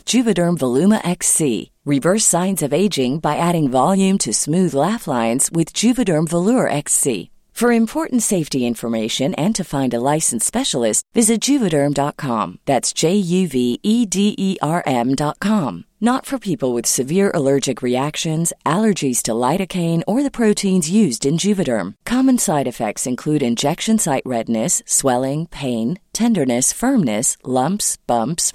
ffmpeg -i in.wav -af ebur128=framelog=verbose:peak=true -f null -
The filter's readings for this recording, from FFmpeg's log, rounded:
Integrated loudness:
  I:         -17.4 LUFS
  Threshold: -27.5 LUFS
Loudness range:
  LRA:         2.0 LU
  Threshold: -37.5 LUFS
  LRA low:   -18.4 LUFS
  LRA high:  -16.4 LUFS
True peak:
  Peak:       -1.5 dBFS